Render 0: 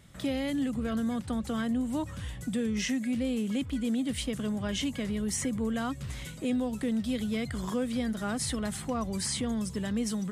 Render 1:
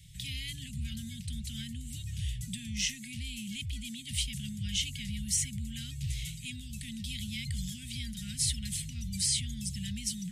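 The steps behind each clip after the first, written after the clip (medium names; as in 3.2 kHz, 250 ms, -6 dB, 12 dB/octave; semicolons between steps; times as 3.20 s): inverse Chebyshev band-stop 320–1200 Hz, stop band 50 dB; trim +4 dB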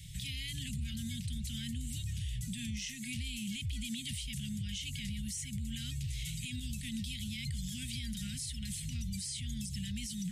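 compression 6:1, threshold -37 dBFS, peak gain reduction 11.5 dB; peak limiter -36 dBFS, peak gain reduction 11.5 dB; trim +5.5 dB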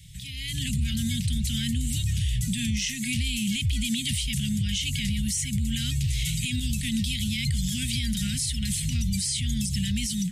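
level rider gain up to 12 dB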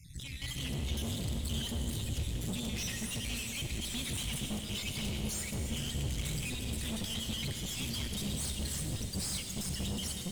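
random holes in the spectrogram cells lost 37%; valve stage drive 35 dB, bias 0.75; on a send at -3.5 dB: reverberation RT60 4.1 s, pre-delay 42 ms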